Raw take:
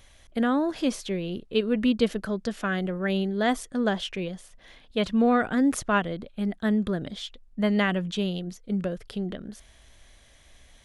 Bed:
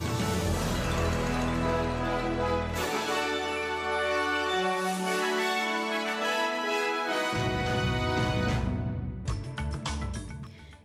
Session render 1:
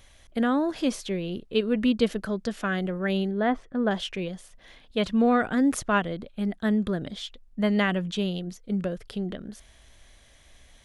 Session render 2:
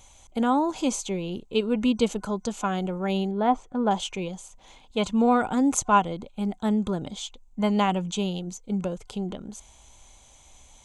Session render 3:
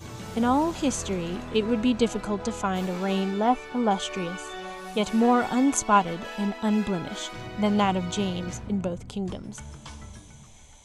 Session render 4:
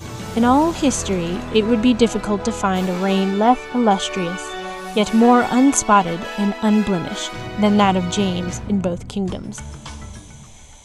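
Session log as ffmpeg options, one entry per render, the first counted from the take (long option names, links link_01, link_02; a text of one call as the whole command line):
ffmpeg -i in.wav -filter_complex "[0:a]asettb=1/sr,asplit=3[link_01][link_02][link_03];[link_01]atrim=end=3.314[link_04];[link_02]atrim=start=3.31:end=3.91,asetpts=PTS-STARTPTS,afade=type=in:duration=0.004:curve=qsin,afade=type=out:start_time=0.596:duration=0.004:curve=qsin,lowpass=1900[link_05];[link_03]atrim=start=3.906[link_06];[link_04][link_05]acrossfade=duration=0.004:curve1=hsin:curve2=qsin[link_07];[link_07][link_06]acrossfade=duration=0.004:curve1=qsin:curve2=hsin" out.wav
ffmpeg -i in.wav -af "superequalizer=9b=2.82:11b=0.316:15b=3.55" out.wav
ffmpeg -i in.wav -i bed.wav -filter_complex "[1:a]volume=-9.5dB[link_01];[0:a][link_01]amix=inputs=2:normalize=0" out.wav
ffmpeg -i in.wav -af "volume=8dB,alimiter=limit=-2dB:level=0:latency=1" out.wav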